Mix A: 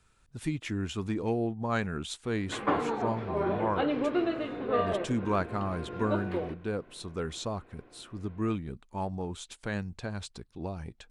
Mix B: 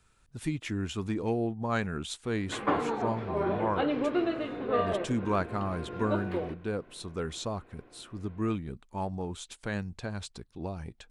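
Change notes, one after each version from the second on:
master: add treble shelf 12 kHz +3.5 dB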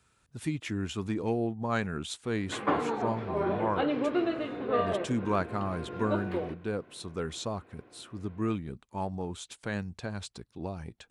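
master: add high-pass 72 Hz

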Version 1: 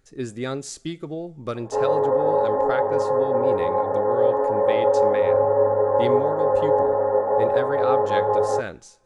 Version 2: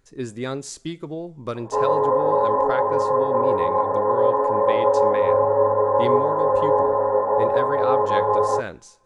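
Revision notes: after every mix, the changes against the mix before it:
master: remove Butterworth band-stop 1 kHz, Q 7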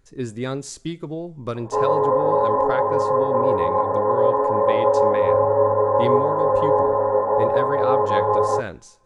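master: add bass shelf 180 Hz +5.5 dB

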